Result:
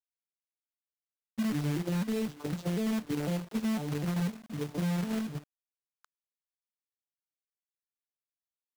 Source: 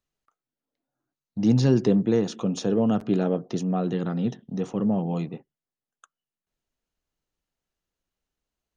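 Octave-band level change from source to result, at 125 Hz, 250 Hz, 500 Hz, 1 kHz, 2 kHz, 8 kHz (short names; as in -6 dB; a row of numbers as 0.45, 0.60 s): -7.0 dB, -8.0 dB, -12.0 dB, -8.0 dB, +0.5 dB, n/a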